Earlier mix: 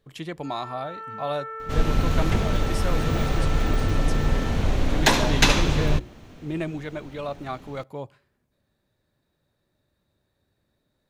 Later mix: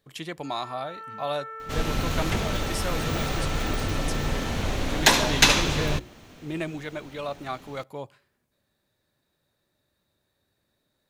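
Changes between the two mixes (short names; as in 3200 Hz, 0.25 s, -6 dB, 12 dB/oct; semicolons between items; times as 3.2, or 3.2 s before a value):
first sound -3.5 dB; master: add tilt +1.5 dB/oct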